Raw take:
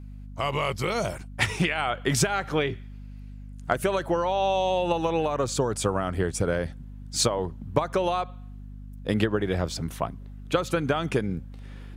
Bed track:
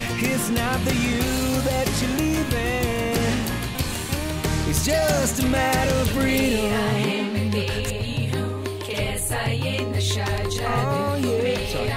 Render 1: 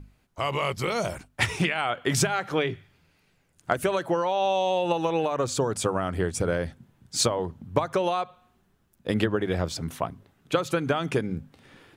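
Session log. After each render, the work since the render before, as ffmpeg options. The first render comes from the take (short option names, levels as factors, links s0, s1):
-af "bandreject=f=50:t=h:w=6,bandreject=f=100:t=h:w=6,bandreject=f=150:t=h:w=6,bandreject=f=200:t=h:w=6,bandreject=f=250:t=h:w=6"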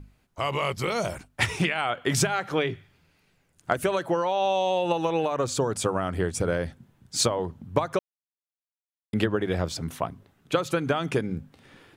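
-filter_complex "[0:a]asplit=3[s0][s1][s2];[s0]atrim=end=7.99,asetpts=PTS-STARTPTS,afade=t=out:st=7.986:d=0.004:c=hsin[s3];[s1]atrim=start=7.99:end=9.13,asetpts=PTS-STARTPTS,volume=0[s4];[s2]atrim=start=9.13,asetpts=PTS-STARTPTS,afade=t=in:d=0.004:c=hsin[s5];[s3][s4][s5]concat=n=3:v=0:a=1"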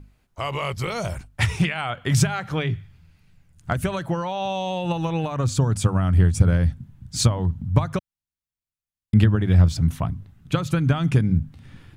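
-af "asubboost=boost=11.5:cutoff=130"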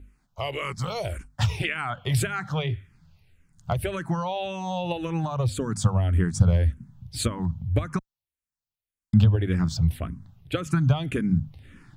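-filter_complex "[0:a]asplit=2[s0][s1];[s1]afreqshift=-1.8[s2];[s0][s2]amix=inputs=2:normalize=1"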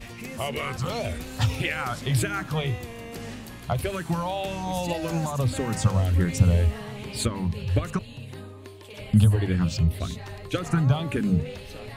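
-filter_complex "[1:a]volume=0.178[s0];[0:a][s0]amix=inputs=2:normalize=0"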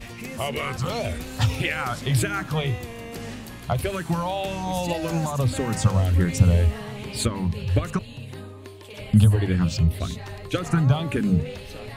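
-af "volume=1.26"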